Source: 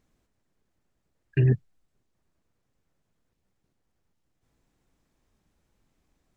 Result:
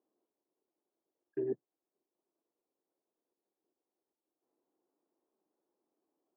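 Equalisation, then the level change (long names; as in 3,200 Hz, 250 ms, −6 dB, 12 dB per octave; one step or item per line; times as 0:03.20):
four-pole ladder high-pass 300 Hz, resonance 55%
transistor ladder low-pass 1,200 Hz, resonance 30%
+5.0 dB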